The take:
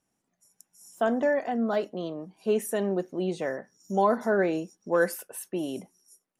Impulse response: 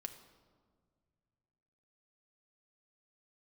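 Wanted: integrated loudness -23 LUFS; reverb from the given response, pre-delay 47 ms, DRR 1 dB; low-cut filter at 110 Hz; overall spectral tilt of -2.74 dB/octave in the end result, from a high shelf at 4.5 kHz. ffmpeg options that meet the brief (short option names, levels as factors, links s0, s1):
-filter_complex "[0:a]highpass=110,highshelf=f=4500:g=-5,asplit=2[s0][s1];[1:a]atrim=start_sample=2205,adelay=47[s2];[s1][s2]afir=irnorm=-1:irlink=0,volume=1.33[s3];[s0][s3]amix=inputs=2:normalize=0,volume=1.33"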